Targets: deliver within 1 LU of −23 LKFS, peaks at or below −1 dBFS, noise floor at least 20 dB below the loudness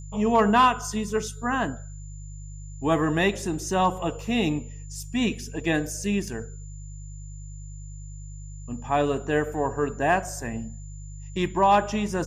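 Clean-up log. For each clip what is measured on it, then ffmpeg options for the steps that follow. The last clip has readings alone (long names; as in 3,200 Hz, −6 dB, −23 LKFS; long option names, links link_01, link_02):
mains hum 50 Hz; hum harmonics up to 150 Hz; level of the hum −37 dBFS; interfering tone 7,100 Hz; level of the tone −50 dBFS; integrated loudness −25.0 LKFS; sample peak −9.5 dBFS; target loudness −23.0 LKFS
→ -af "bandreject=frequency=50:width_type=h:width=4,bandreject=frequency=100:width_type=h:width=4,bandreject=frequency=150:width_type=h:width=4"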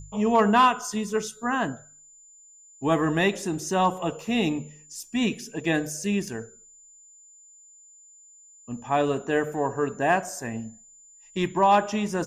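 mains hum none found; interfering tone 7,100 Hz; level of the tone −50 dBFS
→ -af "bandreject=frequency=7100:width=30"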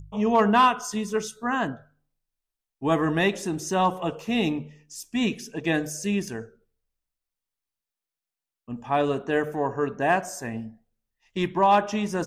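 interfering tone none found; integrated loudness −25.0 LKFS; sample peak −10.0 dBFS; target loudness −23.0 LKFS
→ -af "volume=2dB"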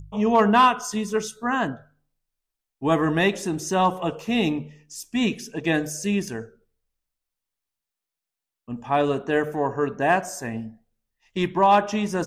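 integrated loudness −23.0 LKFS; sample peak −8.0 dBFS; background noise floor −87 dBFS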